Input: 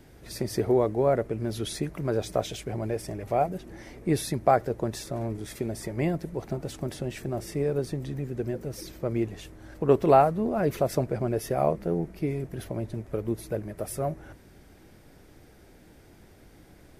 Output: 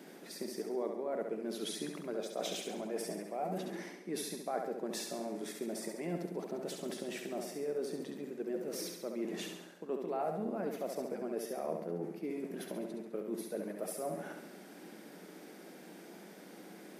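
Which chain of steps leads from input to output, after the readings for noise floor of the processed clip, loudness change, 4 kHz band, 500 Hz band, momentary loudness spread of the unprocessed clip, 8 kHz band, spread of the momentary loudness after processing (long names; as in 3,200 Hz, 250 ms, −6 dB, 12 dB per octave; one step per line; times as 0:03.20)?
−53 dBFS, −11.5 dB, −4.0 dB, −11.0 dB, 11 LU, −4.5 dB, 14 LU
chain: reversed playback
downward compressor 8 to 1, threshold −38 dBFS, peak gain reduction 23.5 dB
reversed playback
elliptic high-pass filter 180 Hz, stop band 40 dB
flutter between parallel walls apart 11.7 metres, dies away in 0.78 s
level +3 dB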